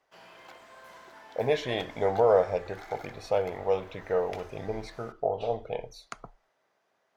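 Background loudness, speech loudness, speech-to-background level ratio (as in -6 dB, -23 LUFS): -49.0 LUFS, -29.5 LUFS, 19.5 dB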